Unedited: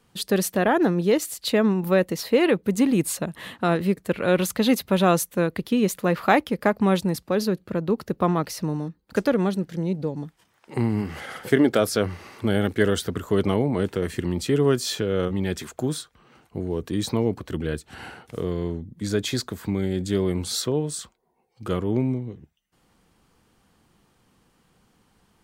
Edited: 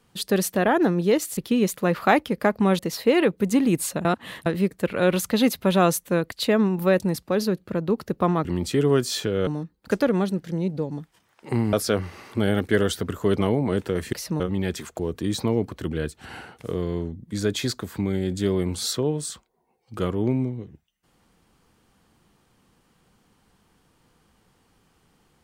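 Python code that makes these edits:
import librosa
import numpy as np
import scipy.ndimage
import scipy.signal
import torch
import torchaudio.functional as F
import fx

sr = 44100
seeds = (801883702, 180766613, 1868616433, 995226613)

y = fx.edit(x, sr, fx.swap(start_s=1.37, length_s=0.68, other_s=5.58, other_length_s=1.42),
    fx.reverse_span(start_s=3.31, length_s=0.41),
    fx.swap(start_s=8.45, length_s=0.27, other_s=14.2, other_length_s=1.02),
    fx.cut(start_s=10.98, length_s=0.82),
    fx.cut(start_s=15.81, length_s=0.87), tone=tone)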